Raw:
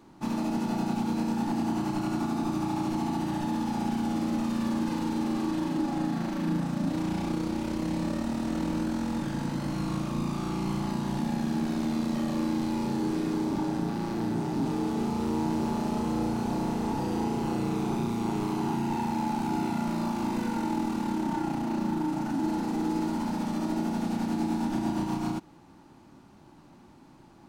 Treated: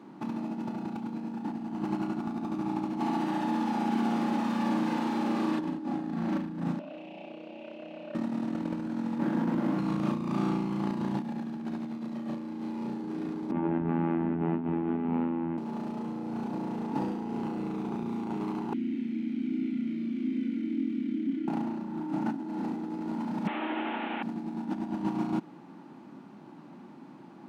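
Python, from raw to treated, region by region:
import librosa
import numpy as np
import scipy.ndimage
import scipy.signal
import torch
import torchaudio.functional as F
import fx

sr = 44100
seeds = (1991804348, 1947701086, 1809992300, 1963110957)

y = fx.chain(x, sr, fx.highpass(hz=480.0, slope=6),
    fx.echo_single(ms=923, db=-5.0), at=(3.0, 5.59))
y = fx.chain(y, sr, fx.double_bandpass(hz=1300.0, octaves=2.1),
    fx.transformer_sat(knee_hz=680.0), at=(6.79, 8.15))
y = fx.chain(y, sr, fx.median_filter(points=15),
    fx.highpass(hz=180.0, slope=12),
    fx.doubler(ms=18.0, db=-11.0), at=(9.18, 9.79))
y = fx.chain(y, sr, fx.steep_lowpass(hz=2800.0, slope=36),
    fx.robotise(hz=83.2), at=(13.51, 15.58))
y = fx.chain(y, sr, fx.vowel_filter(vowel='i'),
    fx.high_shelf(hz=5600.0, db=11.5), at=(18.73, 21.48))
y = fx.chain(y, sr, fx.delta_mod(bps=16000, step_db=-39.0),
    fx.highpass(hz=270.0, slope=24),
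    fx.tilt_eq(slope=4.5), at=(23.47, 24.23))
y = scipy.signal.sosfilt(scipy.signal.butter(4, 190.0, 'highpass', fs=sr, output='sos'), y)
y = fx.bass_treble(y, sr, bass_db=8, treble_db=-12)
y = fx.over_compress(y, sr, threshold_db=-30.0, ratio=-0.5)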